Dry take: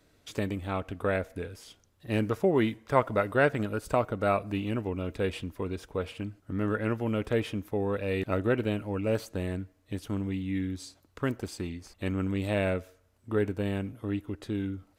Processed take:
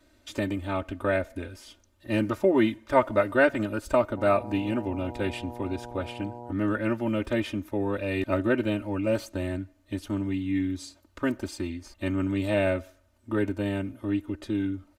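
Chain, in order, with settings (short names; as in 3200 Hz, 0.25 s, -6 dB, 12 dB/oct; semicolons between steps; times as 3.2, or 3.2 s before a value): high shelf 9100 Hz -4 dB; comb 3.3 ms, depth 98%; 4.16–6.51 buzz 120 Hz, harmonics 8, -41 dBFS 0 dB/oct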